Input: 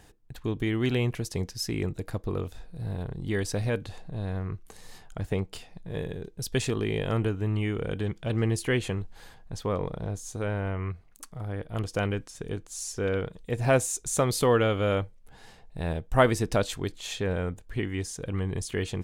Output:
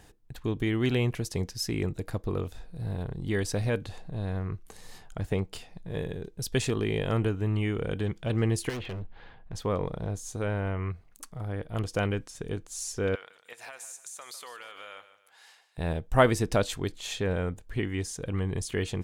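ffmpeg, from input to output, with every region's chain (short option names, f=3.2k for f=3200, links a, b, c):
-filter_complex "[0:a]asettb=1/sr,asplit=3[a][b][c];[a]atrim=end=8.694[d];[b]atrim=start=8.69:end=9.55,asetpts=PTS-STARTPTS,afade=t=in:d=0.004:c=qsin,afade=t=out:st=0.856:d=0.004:c=qsin,lowpass=f=3.3k:w=0.5412,lowpass=f=3.3k:w=1.3066,volume=33dB,asoftclip=hard,volume=-33dB[e];[c]atrim=start=9.546[f];[d][e]acrossfade=d=0.004:c1=hsin:c2=qsin[g];[g][f]acrossfade=d=0.004:c1=qsin:c2=hsin,asettb=1/sr,asplit=3[h][i][j];[h]atrim=end=13.154[k];[i]atrim=start=13.15:end=15.78,asetpts=PTS-STARTPTS,afade=t=in:d=0.004:c=qsin,afade=t=out:st=2.626:d=0.004:c=qsin,highpass=1.2k,acompressor=threshold=-39dB:ratio=12:attack=3.2:release=140:knee=1:detection=peak,aecho=1:1:150|300|450|600:0.224|0.0806|0.029|0.0104,atrim=end_sample=115983[l];[j]atrim=start=15.776[m];[k][l]acrossfade=d=0.004:c1=hsin:c2=qsin[n];[n][m]acrossfade=d=0.004:c1=qsin:c2=hsin"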